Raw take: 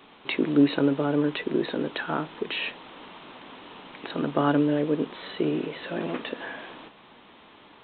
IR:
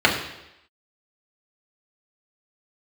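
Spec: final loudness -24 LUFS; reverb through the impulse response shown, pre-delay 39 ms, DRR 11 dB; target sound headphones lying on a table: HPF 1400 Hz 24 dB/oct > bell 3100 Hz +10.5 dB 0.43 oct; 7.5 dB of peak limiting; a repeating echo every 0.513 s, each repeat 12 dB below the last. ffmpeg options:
-filter_complex "[0:a]alimiter=limit=-16.5dB:level=0:latency=1,aecho=1:1:513|1026|1539:0.251|0.0628|0.0157,asplit=2[a][b];[1:a]atrim=start_sample=2205,adelay=39[c];[b][c]afir=irnorm=-1:irlink=0,volume=-32.5dB[d];[a][d]amix=inputs=2:normalize=0,highpass=f=1.4k:w=0.5412,highpass=f=1.4k:w=1.3066,equalizer=f=3.1k:t=o:w=0.43:g=10.5,volume=8.5dB"

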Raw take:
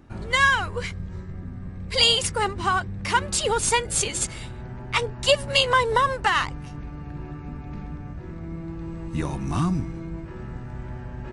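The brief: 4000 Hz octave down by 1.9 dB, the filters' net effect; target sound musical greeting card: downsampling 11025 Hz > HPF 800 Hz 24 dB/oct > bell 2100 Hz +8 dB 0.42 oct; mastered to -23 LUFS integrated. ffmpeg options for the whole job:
-af "equalizer=f=4k:t=o:g=-4,aresample=11025,aresample=44100,highpass=f=800:w=0.5412,highpass=f=800:w=1.3066,equalizer=f=2.1k:t=o:w=0.42:g=8"

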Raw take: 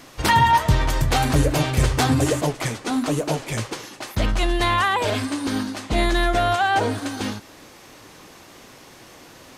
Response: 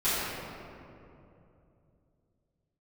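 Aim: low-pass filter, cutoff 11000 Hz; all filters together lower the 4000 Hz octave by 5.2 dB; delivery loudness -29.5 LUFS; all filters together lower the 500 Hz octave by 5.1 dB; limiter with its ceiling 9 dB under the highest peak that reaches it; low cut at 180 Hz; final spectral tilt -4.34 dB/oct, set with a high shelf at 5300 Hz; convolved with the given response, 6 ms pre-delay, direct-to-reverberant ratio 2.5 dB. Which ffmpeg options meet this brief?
-filter_complex "[0:a]highpass=180,lowpass=11k,equalizer=f=500:t=o:g=-7,equalizer=f=4k:t=o:g=-8,highshelf=f=5.3k:g=3.5,alimiter=limit=-17dB:level=0:latency=1,asplit=2[a][b];[1:a]atrim=start_sample=2205,adelay=6[c];[b][c]afir=irnorm=-1:irlink=0,volume=-15.5dB[d];[a][d]amix=inputs=2:normalize=0,volume=-4dB"

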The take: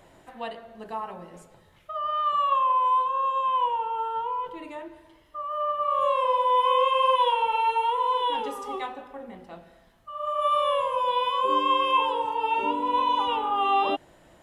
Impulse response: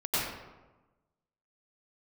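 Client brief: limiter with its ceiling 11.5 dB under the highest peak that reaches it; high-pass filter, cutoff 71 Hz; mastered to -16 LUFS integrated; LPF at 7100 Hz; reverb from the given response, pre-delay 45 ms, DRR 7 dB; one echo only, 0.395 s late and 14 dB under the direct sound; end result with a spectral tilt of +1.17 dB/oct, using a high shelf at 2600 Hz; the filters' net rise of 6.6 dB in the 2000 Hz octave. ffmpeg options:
-filter_complex "[0:a]highpass=71,lowpass=7.1k,equalizer=f=2k:t=o:g=4,highshelf=f=2.6k:g=8.5,alimiter=limit=-20.5dB:level=0:latency=1,aecho=1:1:395:0.2,asplit=2[a][b];[1:a]atrim=start_sample=2205,adelay=45[c];[b][c]afir=irnorm=-1:irlink=0,volume=-17dB[d];[a][d]amix=inputs=2:normalize=0,volume=10.5dB"

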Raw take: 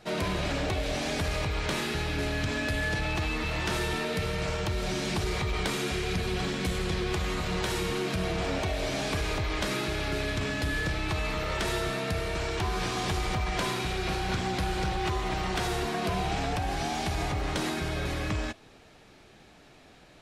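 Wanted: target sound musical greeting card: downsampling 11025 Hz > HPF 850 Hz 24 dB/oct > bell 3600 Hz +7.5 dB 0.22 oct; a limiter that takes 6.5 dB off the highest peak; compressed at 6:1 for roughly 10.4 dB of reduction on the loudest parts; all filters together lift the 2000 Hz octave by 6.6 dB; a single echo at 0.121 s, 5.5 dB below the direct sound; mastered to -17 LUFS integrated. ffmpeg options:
-af "equalizer=f=2k:t=o:g=8,acompressor=threshold=-35dB:ratio=6,alimiter=level_in=7dB:limit=-24dB:level=0:latency=1,volume=-7dB,aecho=1:1:121:0.531,aresample=11025,aresample=44100,highpass=f=850:w=0.5412,highpass=f=850:w=1.3066,equalizer=f=3.6k:t=o:w=0.22:g=7.5,volume=22dB"

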